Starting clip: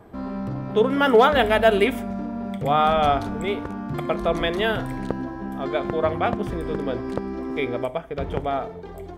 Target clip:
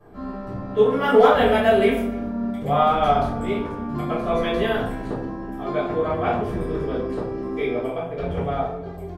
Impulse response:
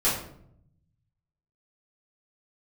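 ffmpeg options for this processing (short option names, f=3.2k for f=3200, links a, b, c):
-filter_complex "[0:a]asplit=2[a][b];[b]adelay=291.5,volume=-24dB,highshelf=f=4k:g=-6.56[c];[a][c]amix=inputs=2:normalize=0[d];[1:a]atrim=start_sample=2205,asetrate=41013,aresample=44100[e];[d][e]afir=irnorm=-1:irlink=0,volume=-14dB"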